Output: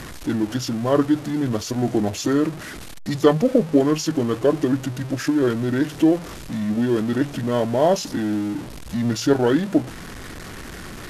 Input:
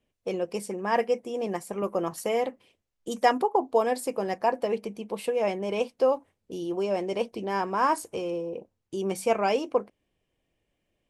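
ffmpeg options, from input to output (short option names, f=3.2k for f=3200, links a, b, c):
-af "aeval=exprs='val(0)+0.5*0.0188*sgn(val(0))':c=same,asetrate=26990,aresample=44100,atempo=1.63392,volume=6dB"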